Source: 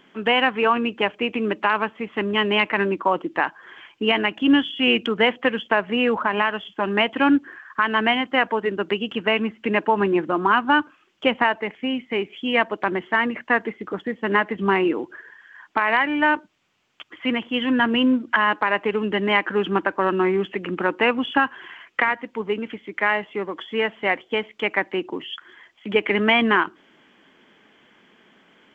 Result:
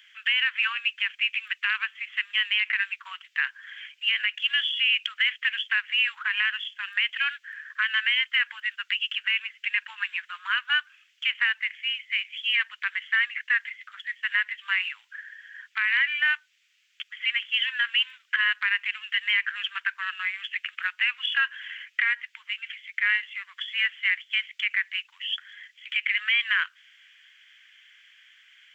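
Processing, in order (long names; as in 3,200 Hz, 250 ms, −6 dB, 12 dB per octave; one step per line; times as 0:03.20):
Butterworth high-pass 1,700 Hz 36 dB per octave
brickwall limiter −18 dBFS, peak gain reduction 9.5 dB
level +4.5 dB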